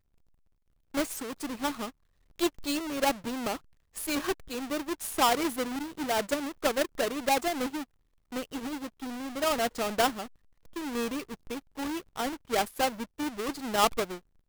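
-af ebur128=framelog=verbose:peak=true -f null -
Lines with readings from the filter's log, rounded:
Integrated loudness:
  I:         -31.2 LUFS
  Threshold: -41.4 LUFS
Loudness range:
  LRA:         3.7 LU
  Threshold: -51.6 LUFS
  LRA low:   -33.1 LUFS
  LRA high:  -29.4 LUFS
True peak:
  Peak:      -11.9 dBFS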